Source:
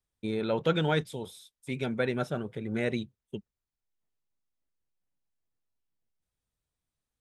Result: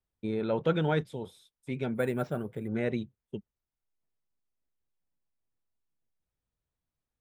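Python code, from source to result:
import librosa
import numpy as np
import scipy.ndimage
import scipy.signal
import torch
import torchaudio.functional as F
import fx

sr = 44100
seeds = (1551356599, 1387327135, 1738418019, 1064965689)

y = fx.resample_bad(x, sr, factor=4, down='none', up='hold', at=(1.95, 2.68))
y = fx.high_shelf(y, sr, hz=2800.0, db=-11.5)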